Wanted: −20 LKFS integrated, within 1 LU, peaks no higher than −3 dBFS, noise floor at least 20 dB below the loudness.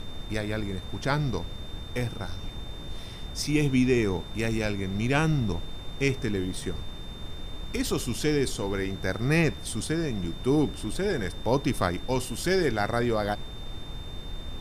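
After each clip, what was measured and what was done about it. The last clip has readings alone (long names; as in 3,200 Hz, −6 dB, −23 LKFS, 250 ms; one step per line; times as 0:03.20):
interfering tone 3,600 Hz; level of the tone −45 dBFS; background noise floor −39 dBFS; target noise floor −49 dBFS; integrated loudness −28.5 LKFS; sample peak −9.0 dBFS; target loudness −20.0 LKFS
→ notch filter 3,600 Hz, Q 30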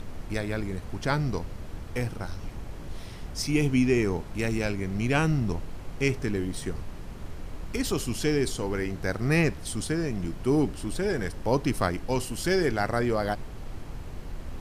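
interfering tone none found; background noise floor −40 dBFS; target noise floor −49 dBFS
→ noise reduction from a noise print 9 dB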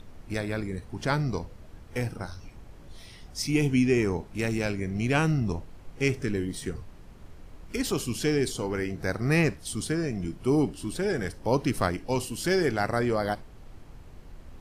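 background noise floor −48 dBFS; target noise floor −49 dBFS
→ noise reduction from a noise print 6 dB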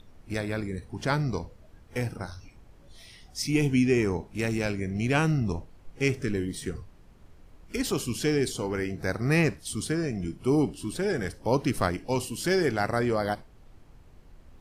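background noise floor −54 dBFS; integrated loudness −28.5 LKFS; sample peak −9.5 dBFS; target loudness −20.0 LKFS
→ level +8.5 dB
brickwall limiter −3 dBFS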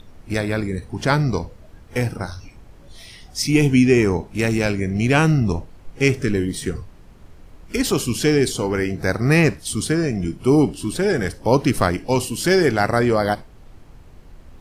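integrated loudness −20.0 LKFS; sample peak −3.0 dBFS; background noise floor −45 dBFS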